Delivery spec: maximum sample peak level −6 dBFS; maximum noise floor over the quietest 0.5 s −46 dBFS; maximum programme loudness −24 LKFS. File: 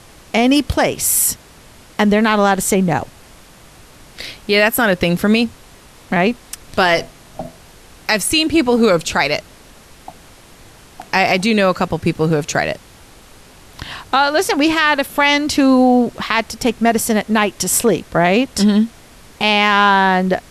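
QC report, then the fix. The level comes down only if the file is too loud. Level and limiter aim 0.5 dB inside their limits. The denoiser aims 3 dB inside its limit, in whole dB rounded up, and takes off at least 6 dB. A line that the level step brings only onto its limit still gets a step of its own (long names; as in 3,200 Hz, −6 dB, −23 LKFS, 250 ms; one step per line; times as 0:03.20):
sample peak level −3.0 dBFS: out of spec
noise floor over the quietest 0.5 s −43 dBFS: out of spec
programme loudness −15.0 LKFS: out of spec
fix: level −9.5 dB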